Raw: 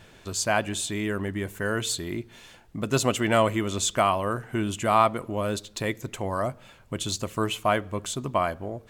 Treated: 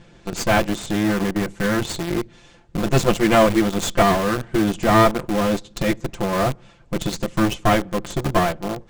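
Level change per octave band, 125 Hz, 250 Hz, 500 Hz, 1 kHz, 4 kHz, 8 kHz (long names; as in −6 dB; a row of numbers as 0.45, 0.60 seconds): +7.0, +9.5, +6.5, +4.5, +3.5, 0.0 decibels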